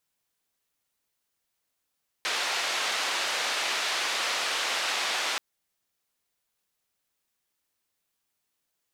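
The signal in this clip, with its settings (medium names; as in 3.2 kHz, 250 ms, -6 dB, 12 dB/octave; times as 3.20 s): noise band 590–4100 Hz, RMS -29 dBFS 3.13 s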